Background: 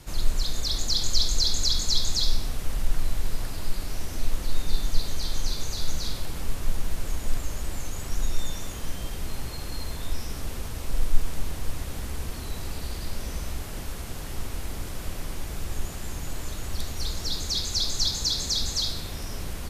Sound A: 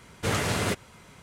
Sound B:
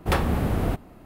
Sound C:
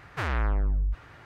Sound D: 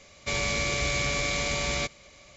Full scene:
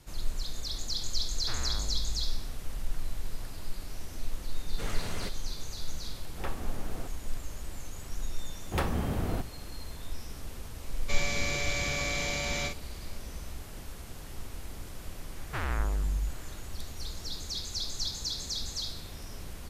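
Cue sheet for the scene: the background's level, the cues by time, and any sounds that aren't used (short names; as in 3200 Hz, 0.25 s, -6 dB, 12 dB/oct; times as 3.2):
background -8.5 dB
1.3 add C -10.5 dB
4.55 add A -12.5 dB
6.32 add B -14.5 dB + tone controls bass -6 dB, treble -7 dB
8.66 add B -7.5 dB
10.82 add D -5 dB + doubler 43 ms -5.5 dB
15.36 add C -4.5 dB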